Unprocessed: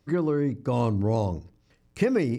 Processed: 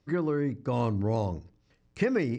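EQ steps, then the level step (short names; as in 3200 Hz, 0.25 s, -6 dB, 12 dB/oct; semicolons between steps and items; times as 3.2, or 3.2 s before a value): LPF 7300 Hz 24 dB/oct; dynamic EQ 1700 Hz, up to +5 dB, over -49 dBFS, Q 1.5; -3.5 dB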